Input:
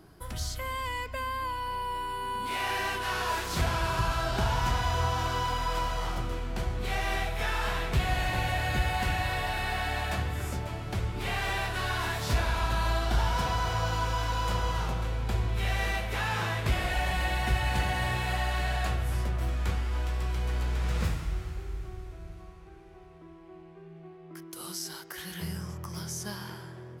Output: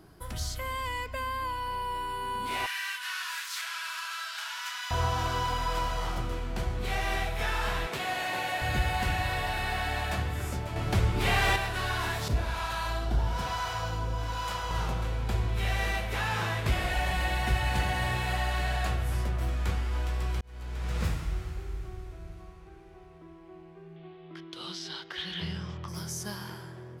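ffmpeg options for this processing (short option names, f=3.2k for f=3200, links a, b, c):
-filter_complex "[0:a]asettb=1/sr,asplit=3[a][b][c];[a]atrim=end=2.664[d];[b]atrim=start=2.66:end=4.91,asetpts=PTS-STARTPTS,afade=t=in:d=0.004:c=qsin,afade=t=out:st=2.246:d=0.004:c=qsin,highpass=f=1.4k:w=0.5412,highpass=f=1.4k:w=1.3066[e];[c]atrim=start=4.906[f];[d][e]acrossfade=d=0.004:c1=hsin:c2=qsin[g];[g][f]acrossfade=d=0.004:c1=qsin:c2=hsin,asettb=1/sr,asplit=3[h][i][j];[h]atrim=end=7.874[k];[i]atrim=start=7.87:end=8.62,asetpts=PTS-STARTPTS,afade=t=in:d=0.004:c=qsin,afade=t=out:st=0.746:d=0.004:c=qsin,highpass=290[l];[j]atrim=start=8.616[m];[k][l]acrossfade=d=0.004:c1=hsin:c2=qsin[n];[n][m]acrossfade=d=0.004:c1=qsin:c2=hsin,asettb=1/sr,asplit=3[o][p][q];[o]atrim=end=12.284[r];[p]atrim=start=12.28:end=14.71,asetpts=PTS-STARTPTS,afade=t=in:d=0.004:c=qsin,afade=t=out:st=2.426:d=0.004:c=qsin,acrossover=split=640[s][t];[s]aeval=exprs='val(0)*(1-0.7/2+0.7/2*cos(2*PI*1.1*n/s))':c=same[u];[t]aeval=exprs='val(0)*(1-0.7/2-0.7/2*cos(2*PI*1.1*n/s))':c=same[v];[u][v]amix=inputs=2:normalize=0[w];[q]atrim=start=14.706[x];[r][w]acrossfade=d=0.004:c1=hsin:c2=qsin[y];[y][x]acrossfade=d=0.004:c1=qsin:c2=hsin,asettb=1/sr,asplit=3[z][aa][ab];[z]atrim=end=23.964[ac];[aa]atrim=start=23.96:end=25.88,asetpts=PTS-STARTPTS,afade=t=in:d=0.004:c=qsin,afade=t=out:st=1.916:d=0.004:c=qsin,lowpass=f=3.5k:t=q:w=3.8[ad];[ab]atrim=start=25.876[ae];[ac][ad]acrossfade=d=0.004:c1=hsin:c2=qsin[af];[af][ae]acrossfade=d=0.004:c1=qsin:c2=hsin,asplit=4[ag][ah][ai][aj];[ag]atrim=end=10.762[ak];[ah]atrim=start=10.758:end=11.562,asetpts=PTS-STARTPTS,volume=6dB[al];[ai]atrim=start=11.558:end=20.41,asetpts=PTS-STARTPTS,afade=t=out:st=8.848:d=0.004:c=hsin[am];[aj]atrim=start=20.41,asetpts=PTS-STARTPTS,afade=t=in:d=0.68[an];[ak][al]acrossfade=d=0.004:c1=hsin:c2=hsin[ao];[am][an]concat=n=2:v=0:a=1[ap];[ao][ap]acrossfade=d=0.004:c1=hsin:c2=hsin"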